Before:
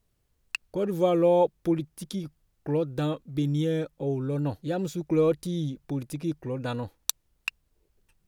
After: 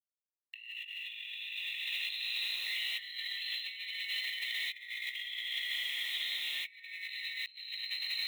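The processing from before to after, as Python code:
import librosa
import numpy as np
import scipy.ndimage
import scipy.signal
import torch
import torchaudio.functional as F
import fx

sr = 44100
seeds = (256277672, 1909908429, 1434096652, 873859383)

y = fx.pitch_glide(x, sr, semitones=9.0, runs='starting unshifted')
y = fx.brickwall_bandpass(y, sr, low_hz=1800.0, high_hz=4200.0)
y = fx.echo_diffused(y, sr, ms=639, feedback_pct=43, wet_db=-14)
y = fx.rev_plate(y, sr, seeds[0], rt60_s=3.4, hf_ratio=1.0, predelay_ms=0, drr_db=-9.5)
y = fx.quant_dither(y, sr, seeds[1], bits=10, dither='none')
y = fx.high_shelf(y, sr, hz=2800.0, db=-11.5)
y = fx.over_compress(y, sr, threshold_db=-53.0, ratio=-0.5)
y = fx.tilt_eq(y, sr, slope=3.0)
y = fx.band_squash(y, sr, depth_pct=70)
y = y * librosa.db_to_amplitude(8.0)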